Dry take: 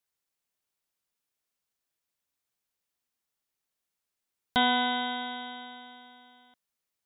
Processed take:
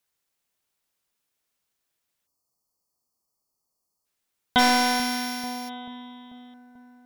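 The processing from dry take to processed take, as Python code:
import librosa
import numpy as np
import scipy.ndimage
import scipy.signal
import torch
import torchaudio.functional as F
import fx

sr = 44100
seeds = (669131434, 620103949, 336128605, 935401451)

p1 = fx.sample_sort(x, sr, block=8, at=(4.58, 5.68), fade=0.02)
p2 = p1 + fx.echo_wet_lowpass(p1, sr, ms=439, feedback_pct=59, hz=830.0, wet_db=-14, dry=0)
p3 = fx.spec_erase(p2, sr, start_s=2.27, length_s=1.79, low_hz=1300.0, high_hz=4200.0)
p4 = fx.slew_limit(p3, sr, full_power_hz=290.0)
y = p4 * 10.0 ** (6.0 / 20.0)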